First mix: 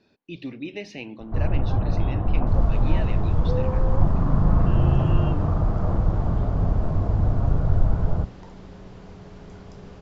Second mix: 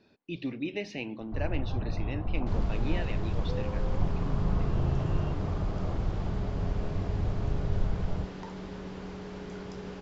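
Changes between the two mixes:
first sound -9.5 dB; second sound +5.5 dB; master: add high shelf 9900 Hz -10.5 dB

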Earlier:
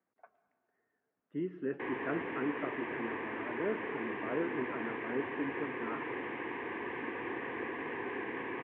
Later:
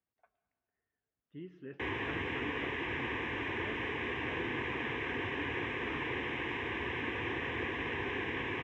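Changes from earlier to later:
speech -11.5 dB; master: remove three-band isolator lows -23 dB, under 170 Hz, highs -22 dB, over 2100 Hz

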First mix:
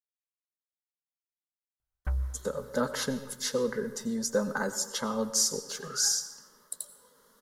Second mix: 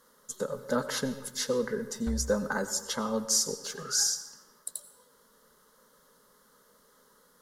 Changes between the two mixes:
speech: entry -2.05 s; background -5.0 dB

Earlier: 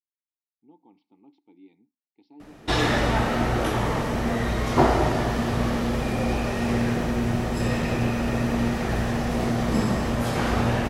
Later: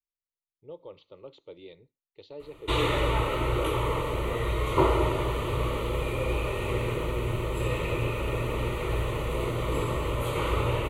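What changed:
speech: remove vowel filter u; master: add fixed phaser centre 1100 Hz, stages 8

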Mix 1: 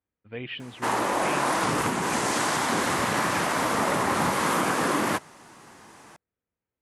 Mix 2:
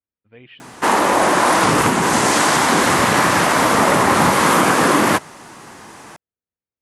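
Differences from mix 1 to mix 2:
speech -8.0 dB; background +10.5 dB

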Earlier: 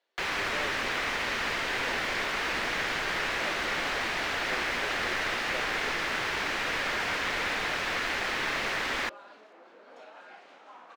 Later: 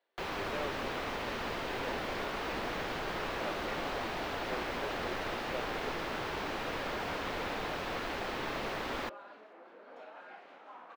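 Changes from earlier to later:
first sound: add bell 1900 Hz -10 dB 1.3 oct; master: add bell 7300 Hz -11 dB 1.9 oct

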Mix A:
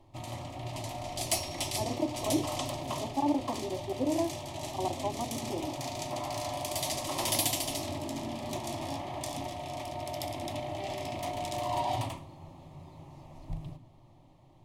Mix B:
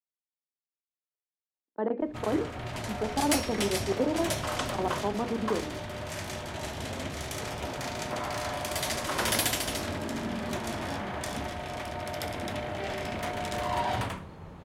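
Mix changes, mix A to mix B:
background: entry +2.00 s; master: remove fixed phaser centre 300 Hz, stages 8

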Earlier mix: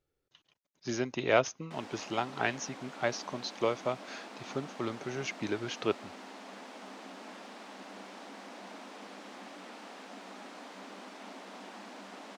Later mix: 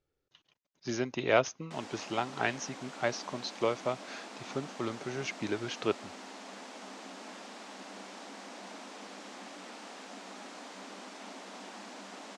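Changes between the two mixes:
background: remove air absorption 99 m; master: add LPF 7500 Hz 24 dB/oct

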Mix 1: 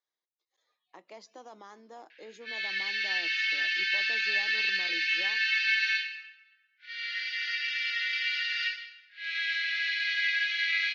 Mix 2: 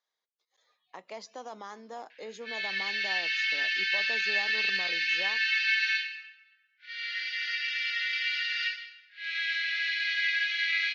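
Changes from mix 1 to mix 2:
speech +6.5 dB; master: add bell 330 Hz -12.5 dB 0.22 oct

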